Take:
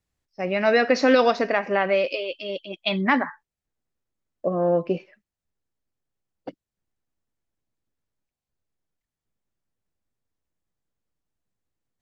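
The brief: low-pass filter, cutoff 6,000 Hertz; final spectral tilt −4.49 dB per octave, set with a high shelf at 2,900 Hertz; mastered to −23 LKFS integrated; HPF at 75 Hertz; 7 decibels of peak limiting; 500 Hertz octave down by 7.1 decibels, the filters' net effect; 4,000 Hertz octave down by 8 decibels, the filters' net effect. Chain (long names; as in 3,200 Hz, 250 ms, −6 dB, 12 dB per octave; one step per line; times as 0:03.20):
high-pass filter 75 Hz
low-pass filter 6,000 Hz
parametric band 500 Hz −8 dB
high-shelf EQ 2,900 Hz −8 dB
parametric band 4,000 Hz −4 dB
level +6.5 dB
brickwall limiter −9.5 dBFS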